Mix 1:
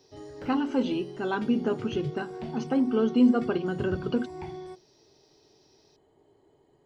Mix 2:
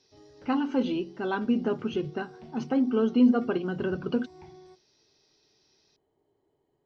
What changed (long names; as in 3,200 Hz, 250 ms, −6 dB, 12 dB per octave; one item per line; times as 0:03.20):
background −10.5 dB
master: add high-frequency loss of the air 54 metres